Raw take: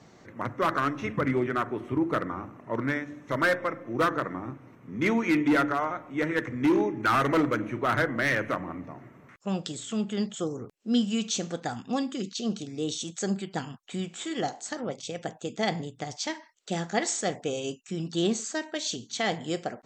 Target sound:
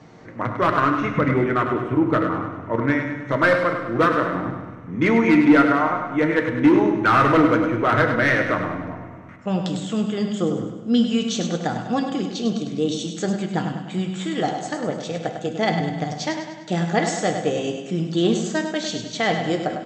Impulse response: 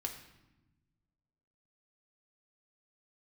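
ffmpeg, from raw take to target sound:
-filter_complex "[0:a]aemphasis=mode=reproduction:type=50fm,aecho=1:1:101|202|303|404|505|606:0.398|0.199|0.0995|0.0498|0.0249|0.0124,asplit=2[s0][s1];[1:a]atrim=start_sample=2205,asetrate=28224,aresample=44100[s2];[s1][s2]afir=irnorm=-1:irlink=0,volume=1.06[s3];[s0][s3]amix=inputs=2:normalize=0"

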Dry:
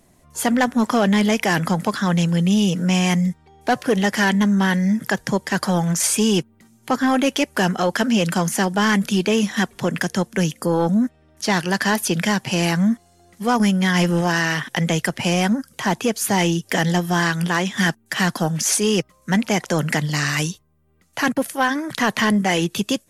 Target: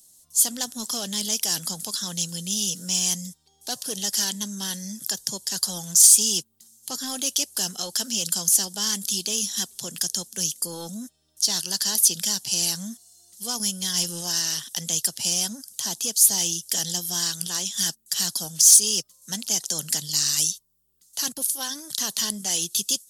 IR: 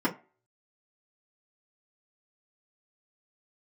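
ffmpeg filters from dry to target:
-af "aexciter=amount=13.3:drive=7.7:freq=3400,volume=0.126"

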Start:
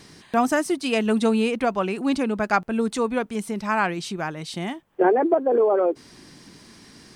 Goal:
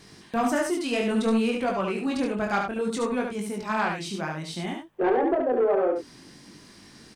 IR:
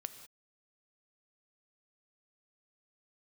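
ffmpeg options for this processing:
-af "flanger=delay=20:depth=5.5:speed=0.6,asoftclip=type=tanh:threshold=0.141,aecho=1:1:72:0.562"

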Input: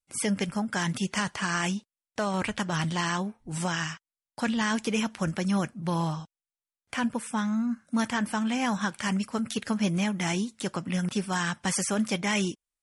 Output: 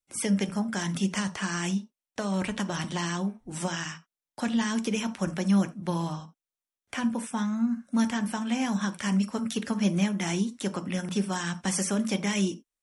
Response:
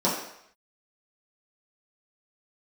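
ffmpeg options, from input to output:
-filter_complex "[0:a]acrossover=split=320|3000[s0][s1][s2];[s1]acompressor=threshold=0.0282:ratio=6[s3];[s0][s3][s2]amix=inputs=3:normalize=0,asplit=2[s4][s5];[1:a]atrim=start_sample=2205,atrim=end_sample=3969[s6];[s5][s6]afir=irnorm=-1:irlink=0,volume=0.0794[s7];[s4][s7]amix=inputs=2:normalize=0,volume=0.841"

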